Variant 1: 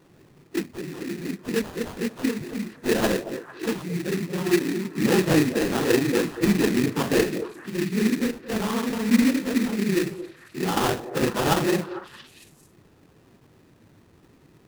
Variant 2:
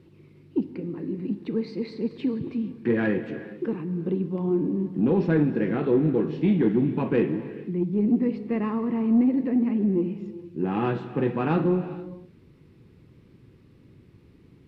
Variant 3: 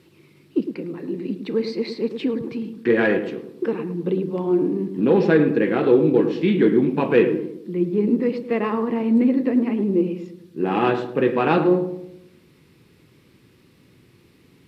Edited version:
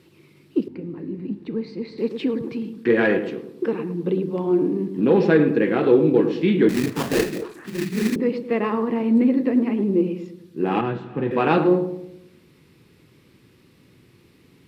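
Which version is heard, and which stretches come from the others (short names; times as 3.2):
3
0.68–1.98 from 2
6.69–8.16 from 1
10.81–11.31 from 2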